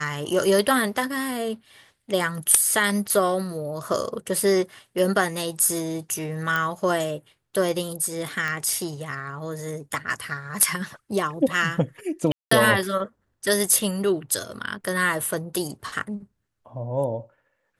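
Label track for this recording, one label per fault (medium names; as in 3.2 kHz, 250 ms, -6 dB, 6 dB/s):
6.560000	6.560000	pop -11 dBFS
8.480000	8.480000	pop -15 dBFS
12.320000	12.510000	dropout 194 ms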